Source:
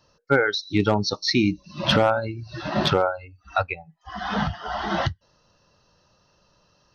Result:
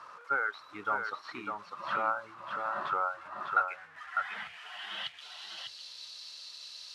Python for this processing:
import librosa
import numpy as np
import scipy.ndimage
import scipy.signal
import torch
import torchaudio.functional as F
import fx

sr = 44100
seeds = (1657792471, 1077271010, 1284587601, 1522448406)

p1 = fx.delta_mod(x, sr, bps=64000, step_db=-31.5)
p2 = fx.filter_sweep_bandpass(p1, sr, from_hz=1200.0, to_hz=4200.0, start_s=3.31, end_s=5.59, q=5.1)
y = p2 + fx.echo_single(p2, sr, ms=601, db=-5.0, dry=0)